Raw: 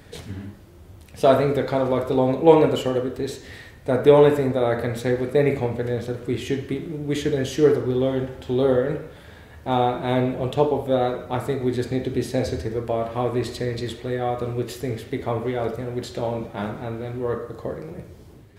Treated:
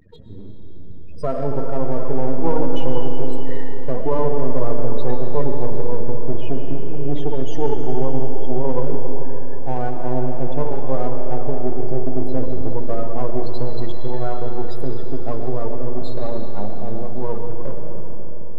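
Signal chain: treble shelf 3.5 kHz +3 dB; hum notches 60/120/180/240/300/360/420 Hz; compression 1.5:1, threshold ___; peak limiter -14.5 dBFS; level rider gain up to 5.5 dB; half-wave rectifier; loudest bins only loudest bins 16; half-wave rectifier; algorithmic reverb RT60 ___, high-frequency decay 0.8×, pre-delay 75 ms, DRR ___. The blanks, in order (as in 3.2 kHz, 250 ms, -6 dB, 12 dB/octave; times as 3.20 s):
-27 dBFS, 4.7 s, 3.5 dB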